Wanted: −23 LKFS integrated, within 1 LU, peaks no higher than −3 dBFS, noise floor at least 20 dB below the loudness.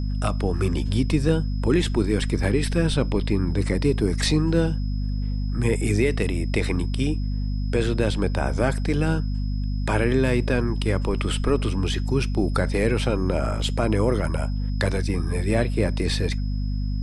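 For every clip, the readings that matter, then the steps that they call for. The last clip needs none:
mains hum 50 Hz; hum harmonics up to 250 Hz; level of the hum −23 dBFS; interfering tone 5,100 Hz; level of the tone −48 dBFS; integrated loudness −24.0 LKFS; sample peak −8.5 dBFS; target loudness −23.0 LKFS
→ hum removal 50 Hz, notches 5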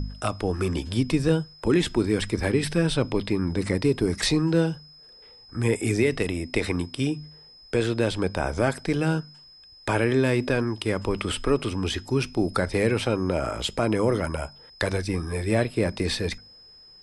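mains hum none found; interfering tone 5,100 Hz; level of the tone −48 dBFS
→ notch filter 5,100 Hz, Q 30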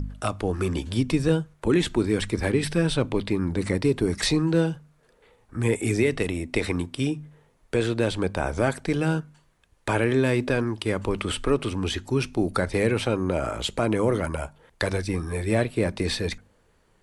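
interfering tone none found; integrated loudness −25.5 LKFS; sample peak −10.0 dBFS; target loudness −23.0 LKFS
→ level +2.5 dB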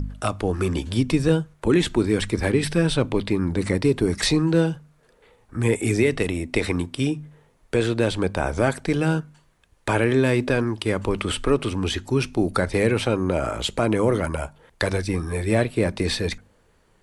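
integrated loudness −23.0 LKFS; sample peak −7.5 dBFS; background noise floor −60 dBFS

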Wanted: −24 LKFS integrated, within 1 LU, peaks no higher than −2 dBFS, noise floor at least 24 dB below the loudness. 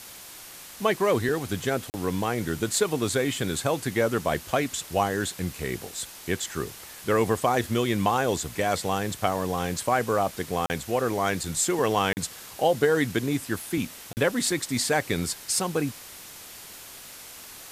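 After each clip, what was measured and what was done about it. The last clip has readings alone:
number of dropouts 4; longest dropout 39 ms; background noise floor −44 dBFS; target noise floor −51 dBFS; integrated loudness −26.5 LKFS; sample peak −7.0 dBFS; target loudness −24.0 LKFS
→ repair the gap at 0:01.90/0:10.66/0:12.13/0:14.13, 39 ms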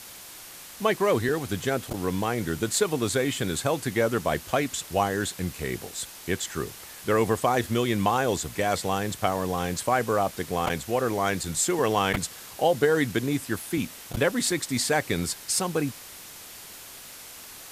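number of dropouts 0; background noise floor −44 dBFS; target noise floor −51 dBFS
→ broadband denoise 7 dB, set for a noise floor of −44 dBFS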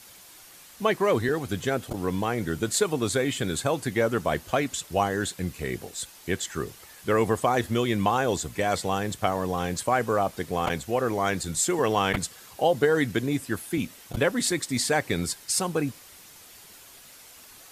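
background noise floor −50 dBFS; target noise floor −51 dBFS
→ broadband denoise 6 dB, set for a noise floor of −50 dBFS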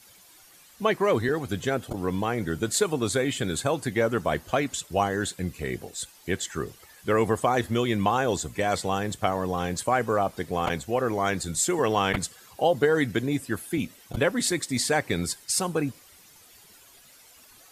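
background noise floor −54 dBFS; integrated loudness −26.5 LKFS; sample peak −7.5 dBFS; target loudness −24.0 LKFS
→ level +2.5 dB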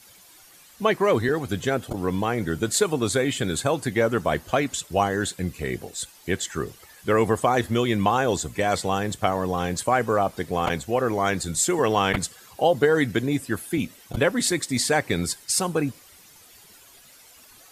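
integrated loudness −24.0 LKFS; sample peak −5.0 dBFS; background noise floor −51 dBFS

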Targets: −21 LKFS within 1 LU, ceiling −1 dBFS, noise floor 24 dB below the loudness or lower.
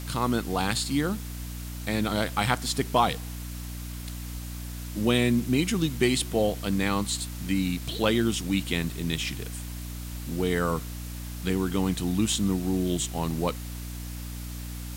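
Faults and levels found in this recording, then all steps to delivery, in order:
mains hum 60 Hz; hum harmonics up to 300 Hz; level of the hum −34 dBFS; background noise floor −37 dBFS; target noise floor −52 dBFS; integrated loudness −28.0 LKFS; sample peak −8.5 dBFS; target loudness −21.0 LKFS
→ hum removal 60 Hz, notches 5
broadband denoise 15 dB, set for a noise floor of −37 dBFS
level +7 dB

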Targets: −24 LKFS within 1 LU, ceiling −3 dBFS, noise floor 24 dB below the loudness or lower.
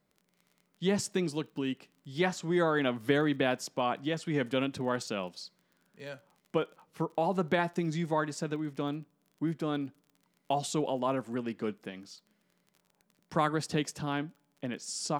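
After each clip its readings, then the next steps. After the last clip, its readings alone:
crackle rate 28 per second; integrated loudness −32.5 LKFS; sample peak −13.0 dBFS; target loudness −24.0 LKFS
→ click removal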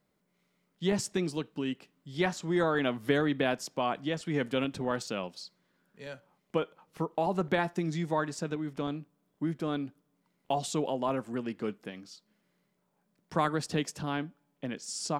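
crackle rate 0 per second; integrated loudness −32.5 LKFS; sample peak −13.0 dBFS; target loudness −24.0 LKFS
→ level +8.5 dB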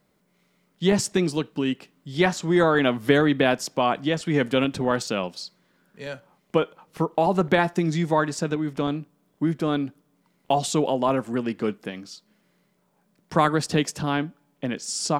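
integrated loudness −24.0 LKFS; sample peak −4.5 dBFS; background noise floor −68 dBFS

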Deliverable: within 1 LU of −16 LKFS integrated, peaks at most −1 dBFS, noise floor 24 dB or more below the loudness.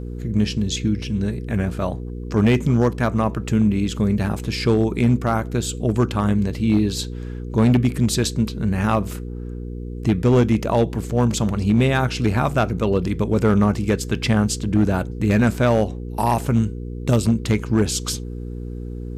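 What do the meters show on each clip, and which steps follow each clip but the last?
share of clipped samples 2.0%; peaks flattened at −10.0 dBFS; mains hum 60 Hz; hum harmonics up to 480 Hz; level of the hum −28 dBFS; integrated loudness −20.5 LKFS; sample peak −10.0 dBFS; target loudness −16.0 LKFS
→ clipped peaks rebuilt −10 dBFS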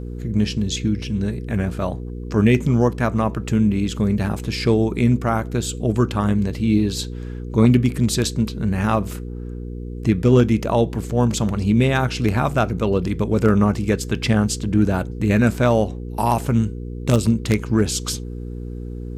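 share of clipped samples 0.0%; mains hum 60 Hz; hum harmonics up to 480 Hz; level of the hum −27 dBFS
→ hum removal 60 Hz, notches 8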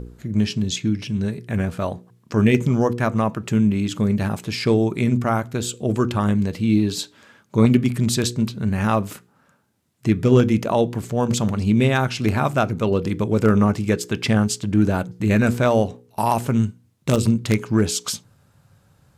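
mains hum none found; integrated loudness −21.0 LKFS; sample peak −2.0 dBFS; target loudness −16.0 LKFS
→ level +5 dB
brickwall limiter −1 dBFS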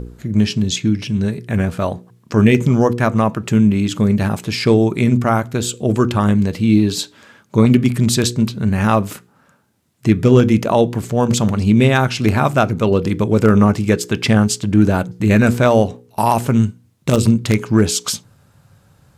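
integrated loudness −16.0 LKFS; sample peak −1.0 dBFS; background noise floor −55 dBFS

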